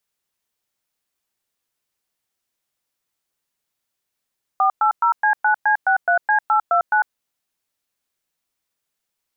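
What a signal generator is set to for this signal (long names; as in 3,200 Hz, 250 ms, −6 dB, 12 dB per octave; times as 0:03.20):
touch tones "480C9C63C829", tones 100 ms, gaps 111 ms, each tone −16 dBFS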